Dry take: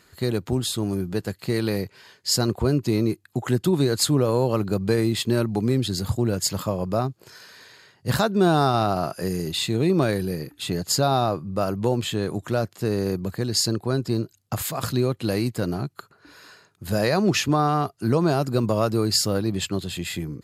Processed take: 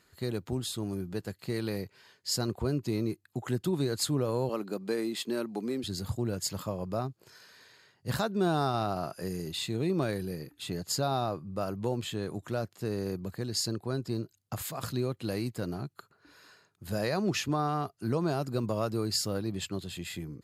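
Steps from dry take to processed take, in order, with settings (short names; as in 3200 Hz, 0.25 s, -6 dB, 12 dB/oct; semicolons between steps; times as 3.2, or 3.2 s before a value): 4.49–5.84 HPF 210 Hz 24 dB/oct; gain -9 dB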